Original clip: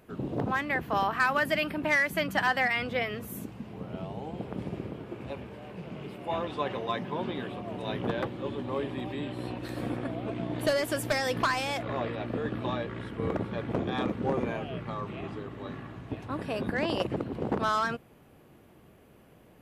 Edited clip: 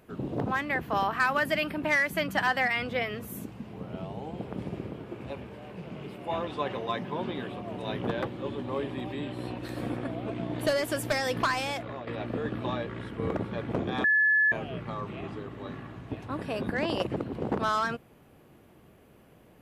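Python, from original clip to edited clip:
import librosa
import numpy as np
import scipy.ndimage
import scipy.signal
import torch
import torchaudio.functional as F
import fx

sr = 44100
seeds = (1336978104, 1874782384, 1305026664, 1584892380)

y = fx.edit(x, sr, fx.fade_out_to(start_s=11.67, length_s=0.4, floor_db=-11.5),
    fx.bleep(start_s=14.04, length_s=0.48, hz=1720.0, db=-19.5), tone=tone)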